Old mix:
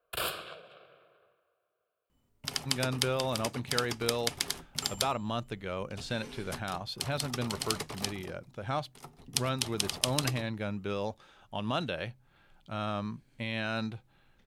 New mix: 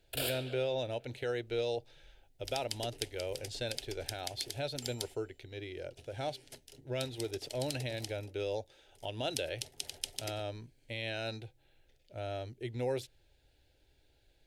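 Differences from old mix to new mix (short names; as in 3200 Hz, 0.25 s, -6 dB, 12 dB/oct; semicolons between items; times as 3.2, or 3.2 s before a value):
speech: entry -2.50 s; second sound -8.0 dB; master: add fixed phaser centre 470 Hz, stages 4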